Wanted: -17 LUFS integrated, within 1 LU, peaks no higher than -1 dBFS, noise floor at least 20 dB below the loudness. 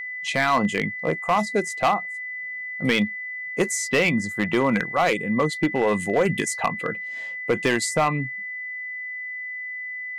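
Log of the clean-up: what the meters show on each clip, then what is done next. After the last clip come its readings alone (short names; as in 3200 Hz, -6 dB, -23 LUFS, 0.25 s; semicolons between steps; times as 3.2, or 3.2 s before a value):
clipped 0.7%; flat tops at -13.5 dBFS; steady tone 2000 Hz; tone level -30 dBFS; loudness -24.0 LUFS; peak -13.5 dBFS; loudness target -17.0 LUFS
-> clip repair -13.5 dBFS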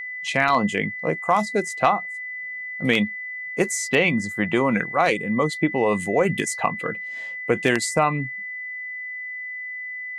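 clipped 0.0%; steady tone 2000 Hz; tone level -30 dBFS
-> notch 2000 Hz, Q 30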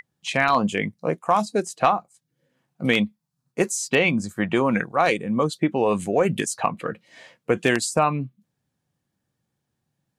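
steady tone none; loudness -23.0 LUFS; peak -4.5 dBFS; loudness target -17.0 LUFS
-> gain +6 dB; limiter -1 dBFS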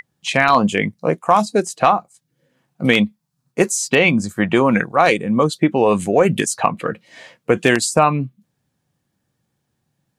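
loudness -17.0 LUFS; peak -1.0 dBFS; noise floor -73 dBFS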